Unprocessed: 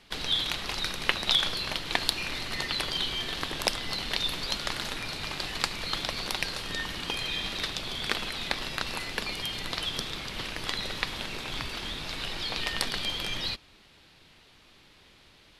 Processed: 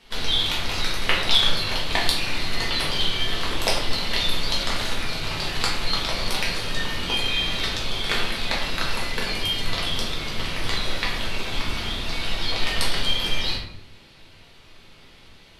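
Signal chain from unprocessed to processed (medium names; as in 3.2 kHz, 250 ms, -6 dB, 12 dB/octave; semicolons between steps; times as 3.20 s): simulated room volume 130 m³, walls mixed, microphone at 1.6 m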